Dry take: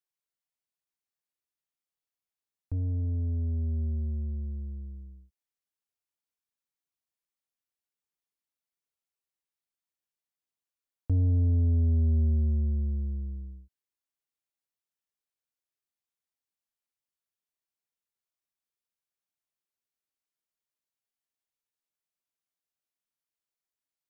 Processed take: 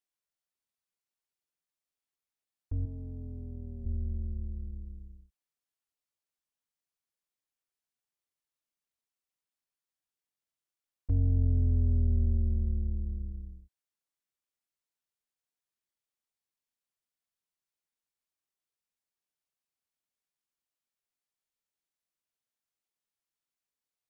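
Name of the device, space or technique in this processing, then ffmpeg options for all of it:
octave pedal: -filter_complex "[0:a]asettb=1/sr,asplit=3[a][b][c];[a]atrim=end=2.854[d];[b]atrim=start=2.85:end=3.86,asetpts=PTS-STARTPTS,afade=t=in:d=0.004:c=qsin,afade=t=out:st=1.006:d=0.004:c=qsin,highpass=f=270:p=1[e];[c]atrim=start=3.856[f];[d][e]acrossfade=d=0.004:c1=hsin:c2=qsin[g];[g][f]acrossfade=d=0.004:c1=qsin:c2=hsin,asplit=2[h][i];[i]asetrate=22050,aresample=44100,atempo=2,volume=-3dB[j];[h][j]amix=inputs=2:normalize=0,volume=-3.5dB"

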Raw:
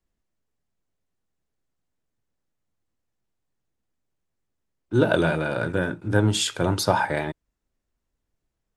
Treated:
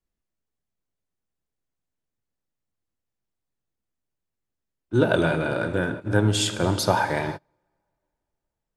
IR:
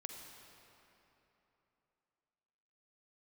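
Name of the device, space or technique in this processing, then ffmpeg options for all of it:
keyed gated reverb: -filter_complex "[0:a]asplit=3[a][b][c];[1:a]atrim=start_sample=2205[d];[b][d]afir=irnorm=-1:irlink=0[e];[c]apad=whole_len=386525[f];[e][f]sidechaingate=range=-35dB:threshold=-34dB:ratio=16:detection=peak,volume=3dB[g];[a][g]amix=inputs=2:normalize=0,volume=-5.5dB"

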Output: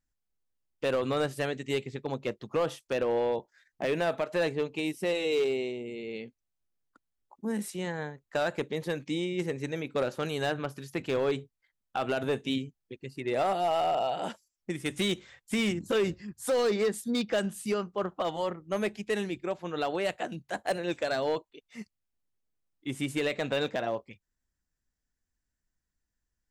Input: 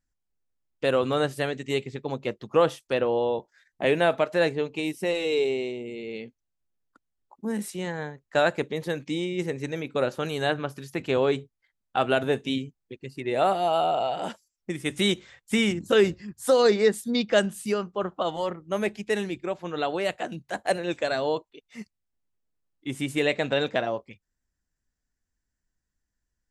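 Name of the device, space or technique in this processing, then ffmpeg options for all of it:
limiter into clipper: -af "alimiter=limit=-15dB:level=0:latency=1:release=70,asoftclip=type=hard:threshold=-19.5dB,volume=-2.5dB"

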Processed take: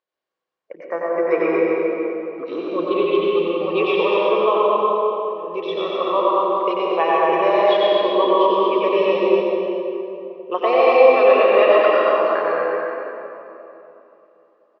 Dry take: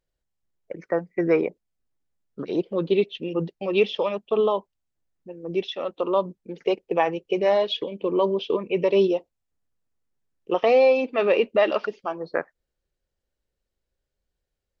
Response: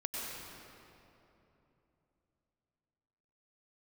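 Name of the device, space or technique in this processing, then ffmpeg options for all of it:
station announcement: -filter_complex "[0:a]highpass=410,lowpass=4k,equalizer=f=1.1k:t=o:w=0.22:g=11,aecho=1:1:90.38|236.2:0.562|0.631[a];[1:a]atrim=start_sample=2205[b];[a][b]afir=irnorm=-1:irlink=0,volume=2.5dB"

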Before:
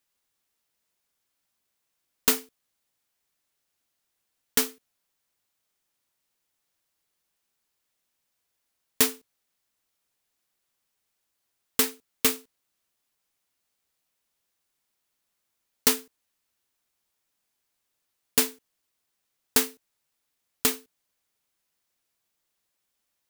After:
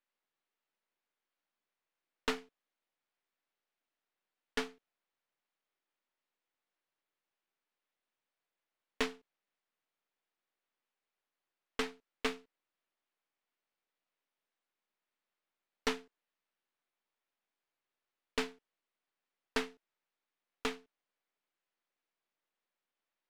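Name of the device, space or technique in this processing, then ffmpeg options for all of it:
crystal radio: -af "highpass=250,lowpass=2.8k,aeval=exprs='if(lt(val(0),0),0.447*val(0),val(0))':c=same,volume=-3dB"

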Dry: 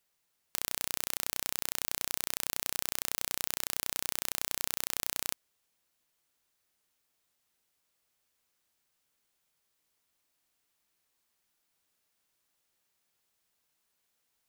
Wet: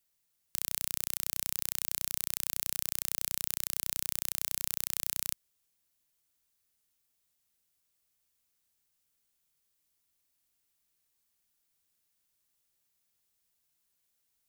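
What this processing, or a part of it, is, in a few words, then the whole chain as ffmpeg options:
smiley-face EQ: -af "lowshelf=f=170:g=6.5,equalizer=f=760:t=o:w=2.8:g=-3.5,highshelf=f=6.2k:g=7,volume=-4.5dB"

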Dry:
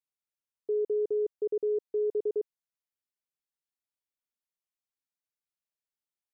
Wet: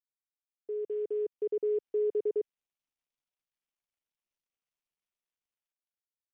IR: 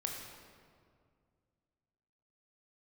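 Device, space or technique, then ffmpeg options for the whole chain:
Bluetooth headset: -af "highpass=150,dynaudnorm=f=470:g=5:m=8dB,aresample=16000,aresample=44100,volume=-8dB" -ar 48000 -c:a sbc -b:a 64k

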